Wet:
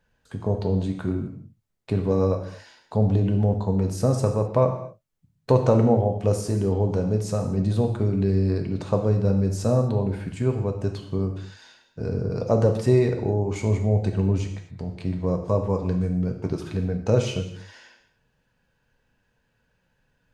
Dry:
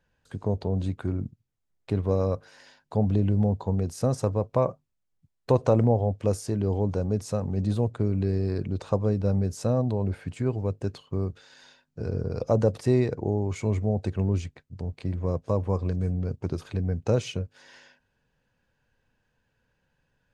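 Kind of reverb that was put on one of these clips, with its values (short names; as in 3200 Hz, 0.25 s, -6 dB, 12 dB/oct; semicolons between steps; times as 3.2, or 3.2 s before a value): non-linear reverb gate 0.28 s falling, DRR 3.5 dB; gain +2 dB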